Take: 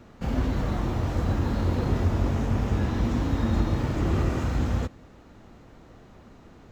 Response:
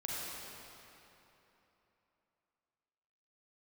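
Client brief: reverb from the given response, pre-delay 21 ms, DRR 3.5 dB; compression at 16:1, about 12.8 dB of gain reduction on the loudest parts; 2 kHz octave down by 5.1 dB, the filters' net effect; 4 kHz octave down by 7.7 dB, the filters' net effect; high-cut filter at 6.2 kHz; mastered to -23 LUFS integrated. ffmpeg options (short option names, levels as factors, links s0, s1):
-filter_complex "[0:a]lowpass=6200,equalizer=f=2000:t=o:g=-5,equalizer=f=4000:t=o:g=-7.5,acompressor=threshold=0.0251:ratio=16,asplit=2[s0][s1];[1:a]atrim=start_sample=2205,adelay=21[s2];[s1][s2]afir=irnorm=-1:irlink=0,volume=0.473[s3];[s0][s3]amix=inputs=2:normalize=0,volume=4.73"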